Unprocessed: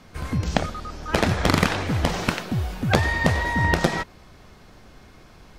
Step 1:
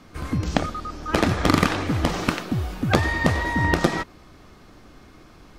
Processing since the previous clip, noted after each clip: small resonant body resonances 300/1200 Hz, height 7 dB, ringing for 30 ms; trim -1 dB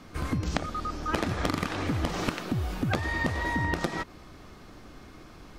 compression 6:1, threshold -25 dBFS, peak gain reduction 12.5 dB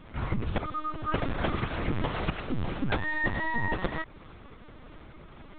LPC vocoder at 8 kHz pitch kept

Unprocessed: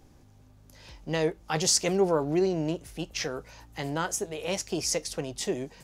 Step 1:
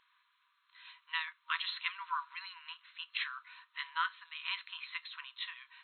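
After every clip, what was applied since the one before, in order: FFT band-pass 950–4200 Hz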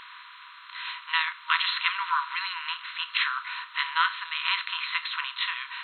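spectral levelling over time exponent 0.6; trim +8 dB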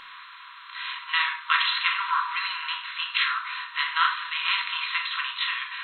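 simulated room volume 970 m³, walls furnished, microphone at 2.2 m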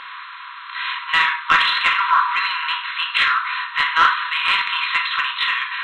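overdrive pedal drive 11 dB, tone 1.8 kHz, clips at -6.5 dBFS; trim +6 dB

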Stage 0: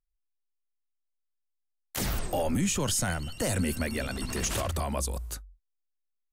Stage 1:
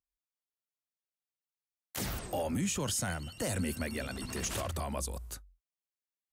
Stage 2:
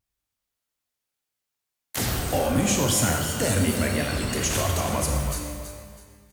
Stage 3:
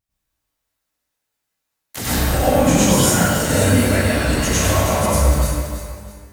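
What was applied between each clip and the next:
high-pass 55 Hz; trim -5 dB
vibrato 2.8 Hz 74 cents; feedback delay 326 ms, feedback 31%, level -10 dB; pitch-shifted reverb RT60 1.2 s, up +12 st, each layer -8 dB, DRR 2 dB; trim +8.5 dB
reverberation RT60 0.95 s, pre-delay 87 ms, DRR -9 dB; trim -1.5 dB

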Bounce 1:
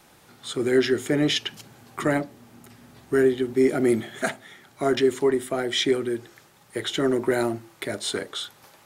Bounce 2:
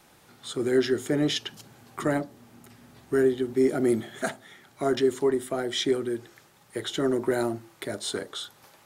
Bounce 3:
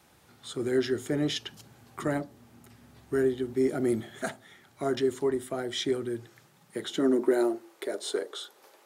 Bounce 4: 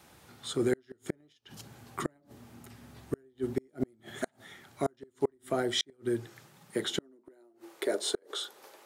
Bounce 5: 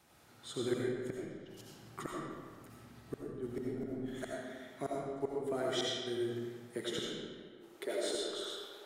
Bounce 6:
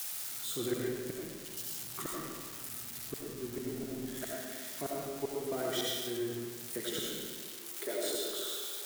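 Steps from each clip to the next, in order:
dynamic bell 2.3 kHz, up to -6 dB, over -45 dBFS, Q 1.9; trim -2.5 dB
high-pass sweep 67 Hz -> 400 Hz, 5.87–7.56 s; trim -4 dB
inverted gate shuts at -20 dBFS, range -38 dB; trim +3 dB
reverberation RT60 1.7 s, pre-delay 45 ms, DRR -4 dB; trim -9 dB
zero-crossing glitches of -32 dBFS

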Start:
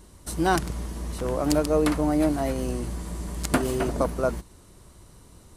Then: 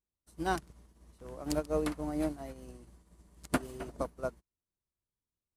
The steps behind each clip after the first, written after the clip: upward expansion 2.5:1, over -44 dBFS; trim -6 dB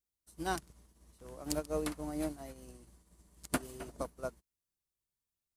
treble shelf 4 kHz +8.5 dB; trim -4 dB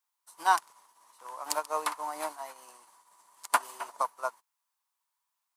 resonant high-pass 970 Hz, resonance Q 5.5; trim +6 dB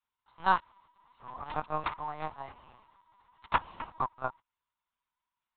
LPC vocoder at 8 kHz pitch kept; trim -1.5 dB

